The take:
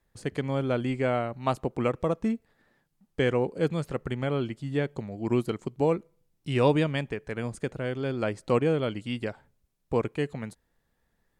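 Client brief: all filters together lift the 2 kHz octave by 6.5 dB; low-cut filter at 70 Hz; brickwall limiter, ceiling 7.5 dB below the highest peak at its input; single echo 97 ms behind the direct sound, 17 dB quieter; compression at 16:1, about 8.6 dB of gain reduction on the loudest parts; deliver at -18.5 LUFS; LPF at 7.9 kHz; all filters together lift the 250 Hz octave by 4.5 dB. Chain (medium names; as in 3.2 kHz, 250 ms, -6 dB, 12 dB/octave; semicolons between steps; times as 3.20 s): high-pass 70 Hz; low-pass 7.9 kHz; peaking EQ 250 Hz +5.5 dB; peaking EQ 2 kHz +8 dB; compression 16:1, threshold -24 dBFS; peak limiter -21 dBFS; delay 97 ms -17 dB; trim +14.5 dB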